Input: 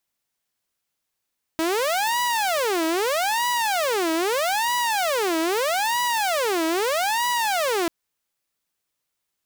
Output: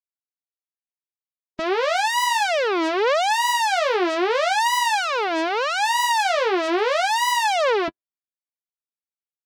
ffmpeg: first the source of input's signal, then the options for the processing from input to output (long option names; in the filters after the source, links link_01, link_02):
-f lavfi -i "aevalsrc='0.126*(2*mod((649*t-328/(2*PI*0.79)*sin(2*PI*0.79*t)),1)-1)':duration=6.29:sample_rate=44100"
-af "afftdn=noise_reduction=32:noise_floor=-33,dynaudnorm=framelen=210:gausssize=13:maxgain=6dB,flanger=delay=4.6:depth=5.9:regen=-15:speed=1.2:shape=sinusoidal"